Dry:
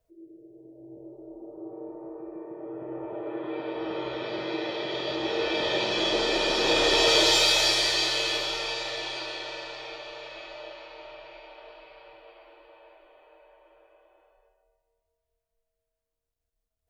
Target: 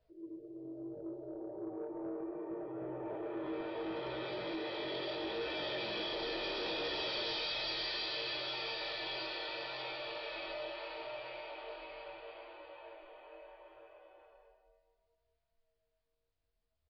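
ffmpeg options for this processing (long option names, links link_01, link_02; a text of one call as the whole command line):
ffmpeg -i in.wav -af "acompressor=threshold=-40dB:ratio=2.5,flanger=delay=16:depth=5.5:speed=0.71,aresample=11025,asoftclip=type=tanh:threshold=-38dB,aresample=44100,volume=4.5dB" out.wav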